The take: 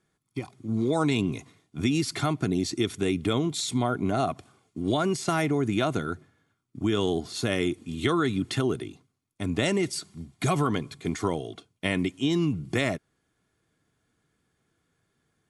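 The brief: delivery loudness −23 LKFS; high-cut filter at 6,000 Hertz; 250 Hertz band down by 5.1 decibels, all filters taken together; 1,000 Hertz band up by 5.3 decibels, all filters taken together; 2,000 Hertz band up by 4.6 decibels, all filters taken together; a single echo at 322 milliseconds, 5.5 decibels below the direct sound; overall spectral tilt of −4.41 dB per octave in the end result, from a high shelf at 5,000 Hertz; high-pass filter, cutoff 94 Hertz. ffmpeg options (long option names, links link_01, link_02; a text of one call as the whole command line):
ffmpeg -i in.wav -af "highpass=94,lowpass=6000,equalizer=frequency=250:width_type=o:gain=-7.5,equalizer=frequency=1000:width_type=o:gain=6.5,equalizer=frequency=2000:width_type=o:gain=3,highshelf=frequency=5000:gain=6,aecho=1:1:322:0.531,volume=4dB" out.wav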